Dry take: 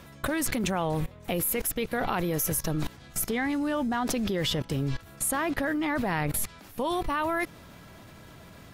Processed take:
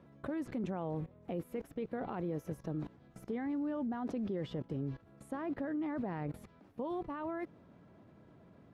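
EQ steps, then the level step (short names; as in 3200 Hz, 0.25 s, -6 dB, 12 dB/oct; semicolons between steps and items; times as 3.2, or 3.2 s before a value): band-pass 290 Hz, Q 0.65; -7.0 dB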